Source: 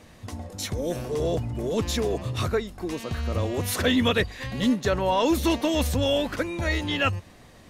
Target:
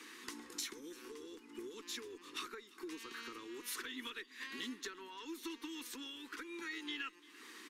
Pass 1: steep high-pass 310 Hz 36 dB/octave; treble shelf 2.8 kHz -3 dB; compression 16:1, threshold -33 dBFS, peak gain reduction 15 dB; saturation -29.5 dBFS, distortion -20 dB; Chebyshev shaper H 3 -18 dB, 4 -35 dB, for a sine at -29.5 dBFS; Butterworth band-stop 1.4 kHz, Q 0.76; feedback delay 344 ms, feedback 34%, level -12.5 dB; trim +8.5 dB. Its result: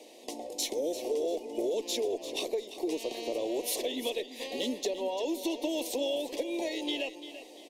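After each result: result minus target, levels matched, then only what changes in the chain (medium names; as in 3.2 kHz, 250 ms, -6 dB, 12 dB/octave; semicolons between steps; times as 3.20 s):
compression: peak gain reduction -10 dB; 500 Hz band +8.5 dB; echo-to-direct +9 dB
change: compression 16:1, threshold -43.5 dBFS, peak gain reduction 24.5 dB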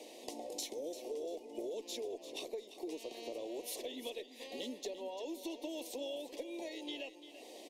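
500 Hz band +8.5 dB; echo-to-direct +9 dB
change: Butterworth band-stop 630 Hz, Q 0.76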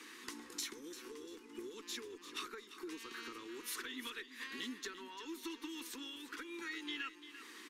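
echo-to-direct +9 dB
change: feedback delay 344 ms, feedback 34%, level -21.5 dB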